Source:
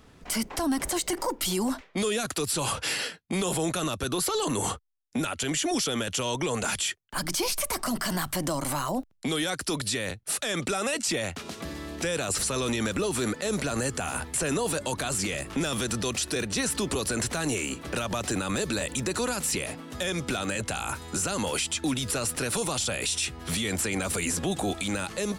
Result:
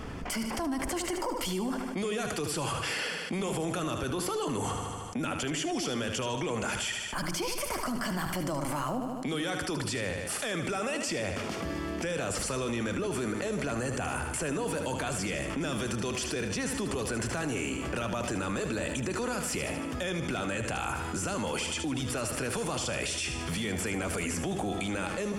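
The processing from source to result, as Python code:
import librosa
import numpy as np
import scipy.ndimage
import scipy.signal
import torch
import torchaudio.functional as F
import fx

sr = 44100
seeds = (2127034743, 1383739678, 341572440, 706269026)

p1 = fx.high_shelf(x, sr, hz=5500.0, db=-10.0)
p2 = fx.notch(p1, sr, hz=3900.0, q=5.7)
p3 = p2 + fx.echo_feedback(p2, sr, ms=76, feedback_pct=53, wet_db=-9, dry=0)
p4 = fx.env_flatten(p3, sr, amount_pct=70)
y = F.gain(torch.from_numpy(p4), -7.0).numpy()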